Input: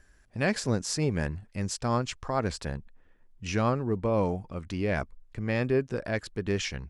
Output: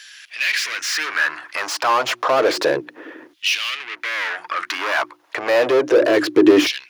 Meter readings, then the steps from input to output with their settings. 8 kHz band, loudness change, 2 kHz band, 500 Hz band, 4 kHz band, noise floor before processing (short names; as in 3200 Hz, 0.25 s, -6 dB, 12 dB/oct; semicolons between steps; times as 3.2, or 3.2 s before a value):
+8.5 dB, +11.0 dB, +16.0 dB, +12.0 dB, +16.0 dB, -60 dBFS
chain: notches 60/120/180/240/300/360 Hz; overdrive pedal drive 35 dB, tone 3100 Hz, clips at -12 dBFS; in parallel at -1.5 dB: compressor, threshold -30 dBFS, peak gain reduction 12.5 dB; on the sum: LFO high-pass saw down 0.3 Hz 260–3500 Hz; thirty-one-band EQ 125 Hz +11 dB, 200 Hz -11 dB, 315 Hz +12 dB, 800 Hz -5 dB, 8000 Hz -8 dB; gain -1 dB